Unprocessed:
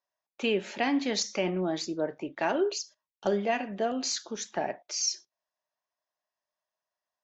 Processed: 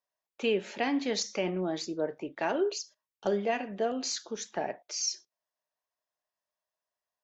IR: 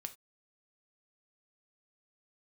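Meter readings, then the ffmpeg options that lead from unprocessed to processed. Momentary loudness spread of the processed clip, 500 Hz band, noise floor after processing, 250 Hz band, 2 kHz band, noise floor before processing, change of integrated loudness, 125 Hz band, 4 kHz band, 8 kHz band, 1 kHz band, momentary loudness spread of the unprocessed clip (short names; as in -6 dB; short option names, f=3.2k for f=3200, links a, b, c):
7 LU, -1.0 dB, under -85 dBFS, -2.5 dB, -2.5 dB, under -85 dBFS, -1.5 dB, -2.5 dB, -2.5 dB, n/a, -2.5 dB, 6 LU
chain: -af "equalizer=f=460:w=5.4:g=4.5,volume=-2.5dB"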